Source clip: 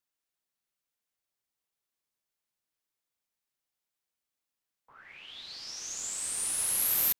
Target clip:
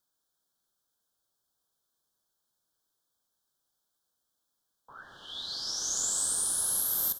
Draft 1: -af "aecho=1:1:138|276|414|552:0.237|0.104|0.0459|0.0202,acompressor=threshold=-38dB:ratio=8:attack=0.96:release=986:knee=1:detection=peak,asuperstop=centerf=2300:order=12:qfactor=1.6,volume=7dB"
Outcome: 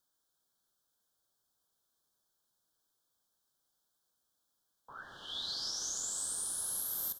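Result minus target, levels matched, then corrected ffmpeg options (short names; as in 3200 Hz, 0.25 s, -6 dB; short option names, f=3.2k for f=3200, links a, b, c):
compressor: peak gain reduction +8 dB
-af "aecho=1:1:138|276|414|552:0.237|0.104|0.0459|0.0202,acompressor=threshold=-29dB:ratio=8:attack=0.96:release=986:knee=1:detection=peak,asuperstop=centerf=2300:order=12:qfactor=1.6,volume=7dB"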